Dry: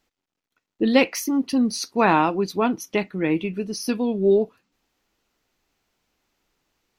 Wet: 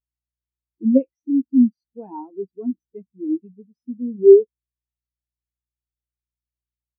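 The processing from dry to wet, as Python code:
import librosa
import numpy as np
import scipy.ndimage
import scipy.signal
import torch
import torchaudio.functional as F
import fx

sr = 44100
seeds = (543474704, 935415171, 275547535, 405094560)

p1 = fx.dmg_buzz(x, sr, base_hz=60.0, harmonics=6, level_db=-41.0, tilt_db=-2, odd_only=False)
p2 = fx.level_steps(p1, sr, step_db=13)
p3 = p1 + (p2 * librosa.db_to_amplitude(0.5))
p4 = fx.power_curve(p3, sr, exponent=0.7)
p5 = fx.spectral_expand(p4, sr, expansion=4.0)
y = p5 * librosa.db_to_amplitude(-2.5)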